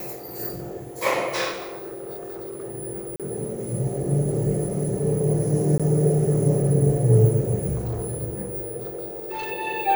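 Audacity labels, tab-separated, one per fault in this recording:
1.510000	2.640000	clipped -30 dBFS
3.160000	3.200000	gap 37 ms
5.780000	5.800000	gap 16 ms
7.750000	8.240000	clipped -24 dBFS
8.790000	9.520000	clipped -27 dBFS

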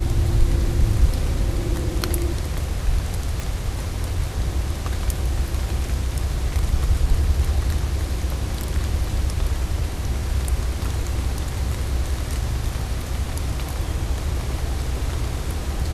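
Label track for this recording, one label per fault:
3.400000	3.400000	pop

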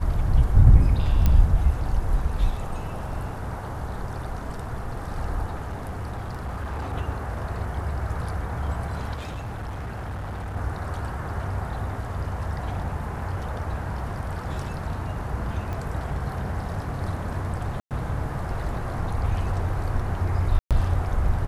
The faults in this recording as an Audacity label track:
1.260000	1.260000	pop -9 dBFS
5.630000	6.940000	clipped -27 dBFS
9.160000	10.570000	clipped -29 dBFS
15.730000	15.730000	pop -21 dBFS
17.800000	17.910000	gap 0.108 s
20.590000	20.710000	gap 0.117 s

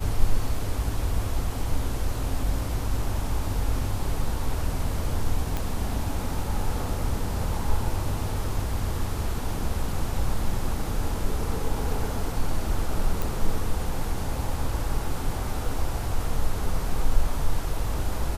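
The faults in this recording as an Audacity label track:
5.570000	5.570000	pop
13.220000	13.220000	pop

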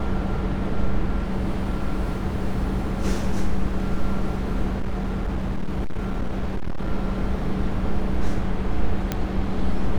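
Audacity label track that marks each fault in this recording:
4.790000	6.900000	clipped -20.5 dBFS
9.120000	9.120000	pop -9 dBFS

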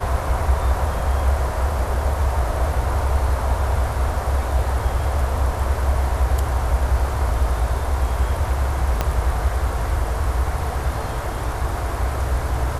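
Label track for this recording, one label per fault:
9.010000	9.010000	pop -6 dBFS

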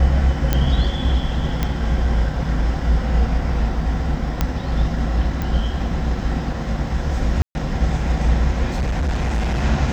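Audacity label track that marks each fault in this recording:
0.530000	0.530000	pop -4 dBFS
1.630000	1.630000	pop -7 dBFS
4.410000	4.410000	pop -5 dBFS
5.420000	5.420000	pop -12 dBFS
7.420000	7.550000	gap 0.131 s
8.750000	9.640000	clipped -17 dBFS

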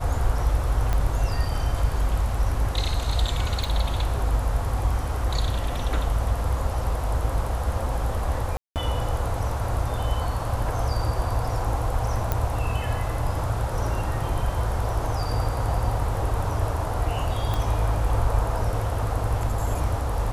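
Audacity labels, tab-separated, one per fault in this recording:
0.930000	0.930000	pop -13 dBFS
3.640000	3.640000	pop
8.570000	8.760000	gap 0.188 s
12.320000	12.320000	pop -10 dBFS
17.540000	17.540000	pop

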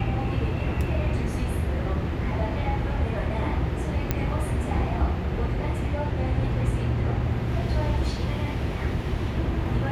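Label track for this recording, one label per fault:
4.110000	4.110000	pop -10 dBFS

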